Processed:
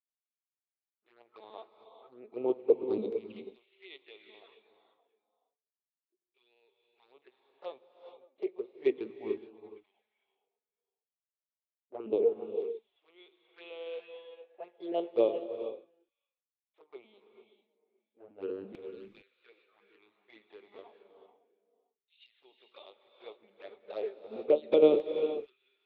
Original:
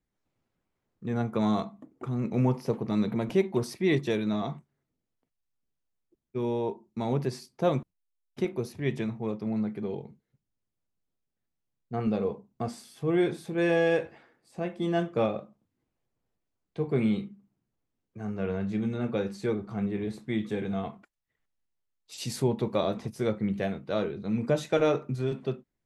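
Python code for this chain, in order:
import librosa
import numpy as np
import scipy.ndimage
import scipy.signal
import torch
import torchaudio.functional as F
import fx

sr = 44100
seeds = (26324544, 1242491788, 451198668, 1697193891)

p1 = fx.lpc_vocoder(x, sr, seeds[0], excitation='pitch_kept', order=8)
p2 = fx.peak_eq(p1, sr, hz=1000.0, db=-4.0, octaves=0.27)
p3 = p2 + fx.echo_single(p2, sr, ms=568, db=-21.0, dry=0)
p4 = fx.env_flanger(p3, sr, rest_ms=4.9, full_db=-22.5)
p5 = fx.graphic_eq_15(p4, sr, hz=(160, 400, 1600), db=(-7, 7, -9))
p6 = fx.filter_lfo_highpass(p5, sr, shape='saw_down', hz=0.32, low_hz=280.0, high_hz=2800.0, q=1.4)
p7 = fx.rev_gated(p6, sr, seeds[1], gate_ms=480, shape='rising', drr_db=4.5)
y = fx.upward_expand(p7, sr, threshold_db=-49.0, expansion=1.5)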